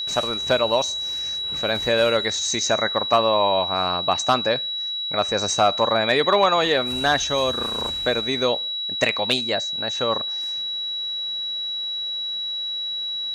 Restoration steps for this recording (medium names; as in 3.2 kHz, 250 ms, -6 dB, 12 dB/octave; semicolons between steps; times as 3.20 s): de-click; band-stop 3.9 kHz, Q 30